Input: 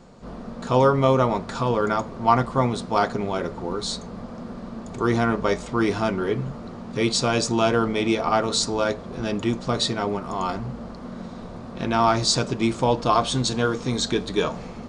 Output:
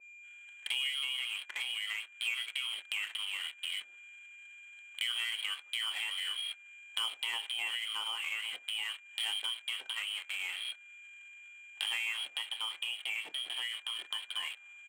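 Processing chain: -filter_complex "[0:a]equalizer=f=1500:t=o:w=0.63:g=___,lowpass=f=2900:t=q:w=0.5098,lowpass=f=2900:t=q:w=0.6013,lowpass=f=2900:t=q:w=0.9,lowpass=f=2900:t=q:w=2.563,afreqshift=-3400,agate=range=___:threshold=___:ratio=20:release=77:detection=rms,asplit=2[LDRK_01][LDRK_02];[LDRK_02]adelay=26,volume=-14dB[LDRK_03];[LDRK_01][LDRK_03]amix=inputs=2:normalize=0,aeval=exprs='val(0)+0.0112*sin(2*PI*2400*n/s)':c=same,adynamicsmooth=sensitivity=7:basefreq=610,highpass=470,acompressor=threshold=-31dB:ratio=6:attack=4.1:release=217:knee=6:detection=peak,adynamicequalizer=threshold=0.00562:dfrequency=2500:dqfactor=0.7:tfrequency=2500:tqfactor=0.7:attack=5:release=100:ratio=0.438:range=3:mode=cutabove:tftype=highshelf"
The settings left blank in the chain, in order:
2, -22dB, -30dB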